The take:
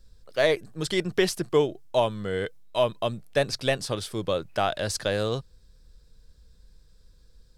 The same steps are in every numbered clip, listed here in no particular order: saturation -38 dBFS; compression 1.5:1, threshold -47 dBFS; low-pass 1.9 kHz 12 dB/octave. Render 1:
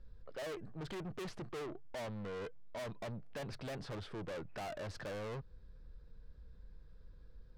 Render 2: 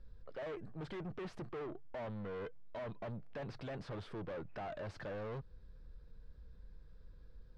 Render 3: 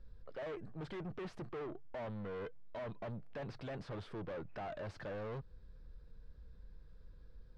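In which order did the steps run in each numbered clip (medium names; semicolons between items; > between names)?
low-pass > saturation > compression; saturation > low-pass > compression; saturation > compression > low-pass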